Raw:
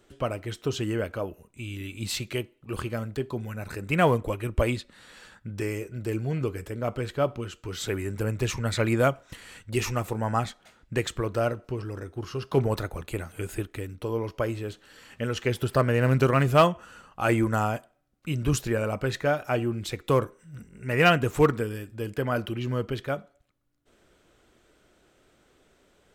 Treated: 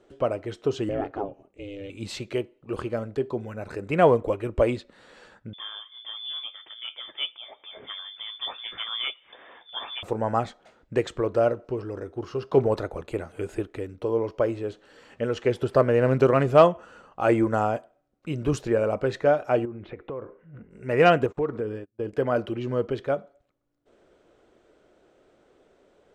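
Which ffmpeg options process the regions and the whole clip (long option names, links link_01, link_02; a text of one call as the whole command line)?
ffmpeg -i in.wav -filter_complex "[0:a]asettb=1/sr,asplit=3[link_01][link_02][link_03];[link_01]atrim=end=0.894[link_04];[link_02]atrim=start=0.89:end=1.9,asetpts=PTS-STARTPTS,afade=type=in:duration=0.004:curve=qsin,afade=type=out:start_time=1.006:duration=0.004:curve=qsin,lowpass=5100,aeval=exprs='val(0)*sin(2*PI*200*n/s)':channel_layout=same[link_05];[link_03]atrim=start=1.896[link_06];[link_04][link_05]acrossfade=duration=0.004:curve1=hsin:curve2=qsin[link_07];[link_07][link_06]acrossfade=duration=0.004:curve1=qsin:curve2=hsin,asettb=1/sr,asplit=3[link_08][link_09][link_10];[link_08]atrim=end=5.534[link_11];[link_09]atrim=start=5.53:end=10.03,asetpts=PTS-STARTPTS,afade=type=in:duration=0.004:curve=qsin,afade=type=out:start_time=4.496:duration=0.004:curve=qsin,acompressor=mode=upward:threshold=-35dB:ratio=2.5:attack=3.2:release=140:knee=2.83:detection=peak,flanger=delay=5.8:depth=7.1:regen=53:speed=1.1:shape=sinusoidal,lowpass=frequency=3100:width_type=q:width=0.5098,lowpass=frequency=3100:width_type=q:width=0.6013,lowpass=frequency=3100:width_type=q:width=0.9,lowpass=frequency=3100:width_type=q:width=2.563,afreqshift=-3600[link_12];[link_10]atrim=start=10.026[link_13];[link_11][link_12]acrossfade=duration=0.004:curve1=hsin:curve2=qsin[link_14];[link_14][link_13]acrossfade=duration=0.004:curve1=qsin:curve2=hsin,asettb=1/sr,asplit=3[link_15][link_16][link_17];[link_15]atrim=end=19.654[link_18];[link_16]atrim=start=19.65:end=20.71,asetpts=PTS-STARTPTS,afade=type=in:duration=0.004:curve=qsin,afade=type=out:start_time=1.056:duration=0.004:curve=qsin,lowpass=frequency=2500:width=0.5412,lowpass=frequency=2500:width=1.3066,acompressor=threshold=-33dB:ratio=12:attack=3.2:release=140:knee=1:detection=peak[link_19];[link_17]atrim=start=20.706[link_20];[link_18][link_19]acrossfade=duration=0.004:curve1=hsin:curve2=qsin[link_21];[link_21][link_20]acrossfade=duration=0.004:curve1=qsin:curve2=hsin,asettb=1/sr,asplit=3[link_22][link_23][link_24];[link_22]atrim=end=21.264[link_25];[link_23]atrim=start=21.26:end=22.13,asetpts=PTS-STARTPTS,afade=type=in:duration=0.004:curve=qsin,afade=type=out:start_time=0.866:duration=0.004:curve=qsin,aemphasis=mode=reproduction:type=75kf,agate=range=-30dB:threshold=-37dB:ratio=16:release=100:detection=peak,acompressor=threshold=-27dB:ratio=4:attack=3.2:release=140:knee=1:detection=peak[link_26];[link_24]atrim=start=22.126[link_27];[link_25][link_26]acrossfade=duration=0.004:curve1=hsin:curve2=qsin[link_28];[link_28][link_27]acrossfade=duration=0.004:curve1=qsin:curve2=hsin,lowpass=7300,equalizer=frequency=510:width_type=o:width=2.2:gain=11.5,volume=-5.5dB" out.wav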